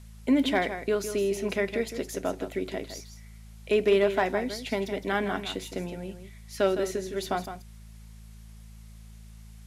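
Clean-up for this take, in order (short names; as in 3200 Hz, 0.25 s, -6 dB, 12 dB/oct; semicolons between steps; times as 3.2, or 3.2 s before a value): clip repair -14 dBFS; de-hum 54.5 Hz, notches 4; expander -39 dBFS, range -21 dB; inverse comb 0.161 s -10 dB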